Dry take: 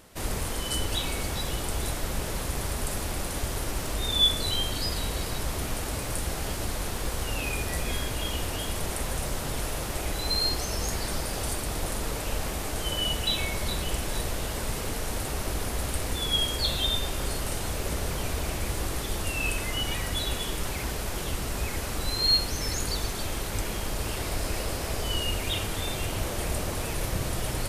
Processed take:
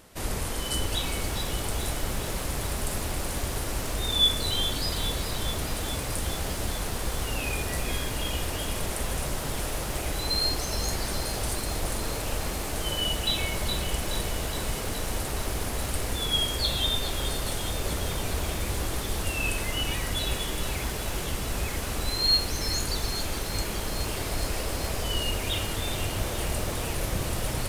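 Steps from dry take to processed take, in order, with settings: lo-fi delay 0.419 s, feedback 80%, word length 7-bit, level -11 dB

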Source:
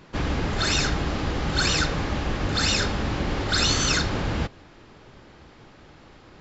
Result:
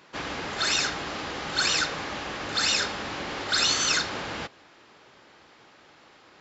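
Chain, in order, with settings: HPF 740 Hz 6 dB/oct

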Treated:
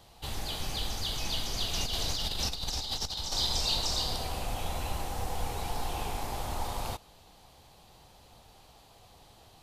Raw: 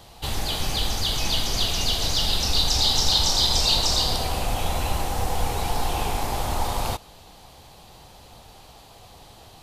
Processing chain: 1.73–3.36 negative-ratio compressor -23 dBFS, ratio -0.5; gain -9 dB

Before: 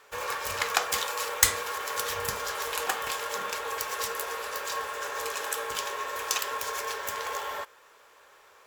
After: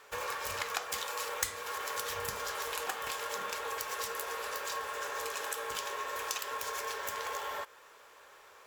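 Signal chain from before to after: compressor 2.5:1, threshold -36 dBFS, peak gain reduction 14.5 dB

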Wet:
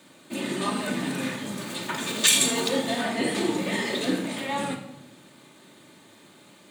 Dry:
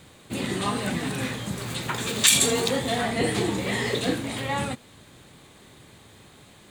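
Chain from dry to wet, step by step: HPF 160 Hz 24 dB/oct; shoebox room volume 2600 m³, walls furnished, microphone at 2.6 m; gain -3 dB

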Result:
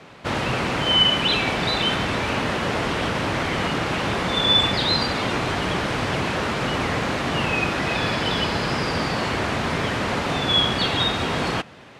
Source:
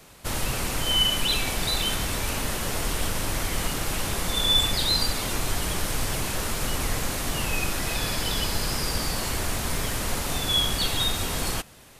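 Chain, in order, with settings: BPF 120–2900 Hz; gain +8.5 dB

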